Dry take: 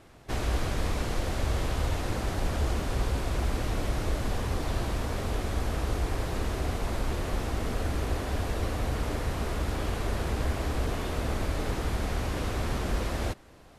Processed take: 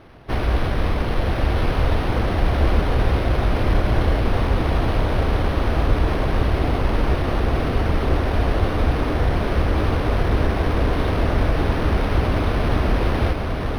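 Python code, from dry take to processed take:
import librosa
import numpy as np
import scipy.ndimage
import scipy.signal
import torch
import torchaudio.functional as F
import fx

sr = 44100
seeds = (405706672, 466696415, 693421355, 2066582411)

p1 = x + fx.echo_diffused(x, sr, ms=1050, feedback_pct=66, wet_db=-4.0, dry=0)
p2 = np.interp(np.arange(len(p1)), np.arange(len(p1))[::6], p1[::6])
y = F.gain(torch.from_numpy(p2), 8.5).numpy()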